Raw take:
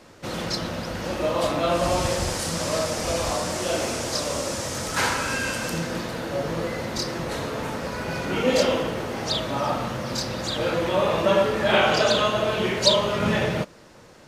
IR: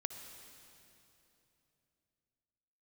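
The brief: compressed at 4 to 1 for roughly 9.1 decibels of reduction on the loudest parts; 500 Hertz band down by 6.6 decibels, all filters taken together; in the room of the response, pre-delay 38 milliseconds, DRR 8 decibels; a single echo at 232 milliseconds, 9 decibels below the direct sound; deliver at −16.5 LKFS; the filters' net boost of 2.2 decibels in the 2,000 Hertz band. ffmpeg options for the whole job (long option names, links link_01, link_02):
-filter_complex "[0:a]equalizer=frequency=500:width_type=o:gain=-8.5,equalizer=frequency=2000:width_type=o:gain=3.5,acompressor=threshold=-25dB:ratio=4,aecho=1:1:232:0.355,asplit=2[link_01][link_02];[1:a]atrim=start_sample=2205,adelay=38[link_03];[link_02][link_03]afir=irnorm=-1:irlink=0,volume=-7dB[link_04];[link_01][link_04]amix=inputs=2:normalize=0,volume=11dB"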